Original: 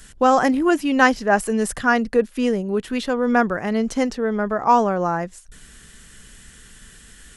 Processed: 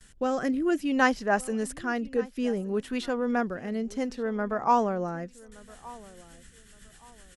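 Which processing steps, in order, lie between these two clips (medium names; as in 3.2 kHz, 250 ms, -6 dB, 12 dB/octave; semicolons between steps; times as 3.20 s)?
gate with hold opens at -35 dBFS; rotary cabinet horn 0.6 Hz, later 8 Hz, at 5.16 s; on a send: feedback delay 1169 ms, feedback 27%, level -21 dB; on the sum: trim -6.5 dB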